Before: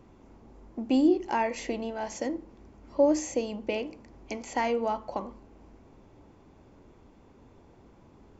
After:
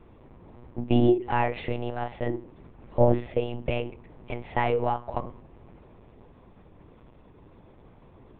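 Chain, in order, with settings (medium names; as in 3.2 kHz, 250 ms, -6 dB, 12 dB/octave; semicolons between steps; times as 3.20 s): monotone LPC vocoder at 8 kHz 120 Hz; trim +3 dB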